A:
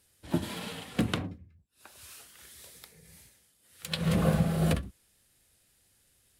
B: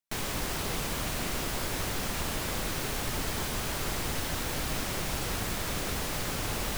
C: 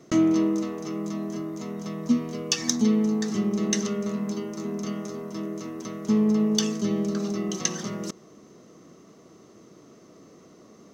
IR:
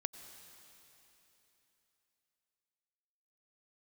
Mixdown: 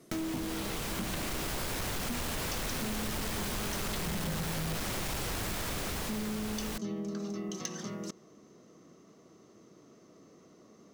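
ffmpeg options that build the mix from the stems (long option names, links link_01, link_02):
-filter_complex "[0:a]asplit=2[link_01][link_02];[link_02]adelay=3.5,afreqshift=-0.66[link_03];[link_01][link_03]amix=inputs=2:normalize=1,volume=3dB[link_04];[1:a]dynaudnorm=framelen=130:gausssize=17:maxgain=8dB,volume=0dB[link_05];[2:a]volume=-6.5dB[link_06];[link_04][link_05][link_06]amix=inputs=3:normalize=0,asoftclip=type=tanh:threshold=-21.5dB,acompressor=threshold=-33dB:ratio=6"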